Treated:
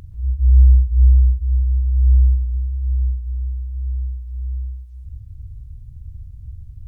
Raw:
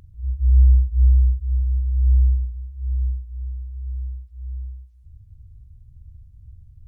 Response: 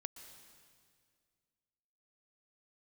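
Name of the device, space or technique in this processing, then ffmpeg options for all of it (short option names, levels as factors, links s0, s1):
ducked reverb: -filter_complex "[0:a]asplit=3[s0][s1][s2];[1:a]atrim=start_sample=2205[s3];[s1][s3]afir=irnorm=-1:irlink=0[s4];[s2]apad=whole_len=303061[s5];[s4][s5]sidechaincompress=threshold=0.02:ratio=8:attack=5.4:release=112,volume=1.78[s6];[s0][s6]amix=inputs=2:normalize=0,volume=1.33"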